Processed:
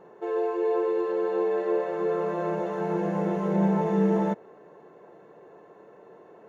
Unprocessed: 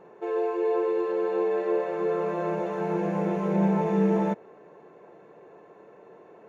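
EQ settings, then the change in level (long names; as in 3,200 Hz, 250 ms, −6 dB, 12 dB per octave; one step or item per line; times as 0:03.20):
notch filter 2,400 Hz, Q 6.4
0.0 dB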